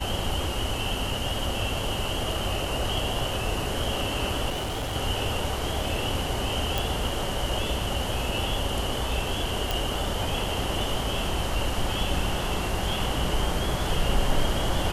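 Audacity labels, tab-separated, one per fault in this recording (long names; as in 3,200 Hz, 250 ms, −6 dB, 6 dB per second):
4.490000	4.960000	clipping −26.5 dBFS
6.780000	6.780000	click
9.710000	9.710000	click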